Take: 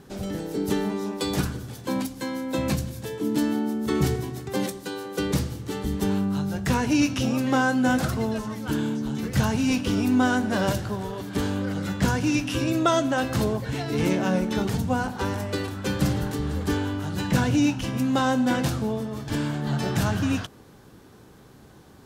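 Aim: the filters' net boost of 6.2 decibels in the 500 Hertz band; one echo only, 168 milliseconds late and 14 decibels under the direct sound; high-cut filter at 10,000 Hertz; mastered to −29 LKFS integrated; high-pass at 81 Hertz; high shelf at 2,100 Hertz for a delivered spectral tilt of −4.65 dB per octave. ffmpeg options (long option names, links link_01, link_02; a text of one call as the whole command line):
ffmpeg -i in.wav -af "highpass=81,lowpass=10000,equalizer=frequency=500:width_type=o:gain=7,highshelf=frequency=2100:gain=8.5,aecho=1:1:168:0.2,volume=-6.5dB" out.wav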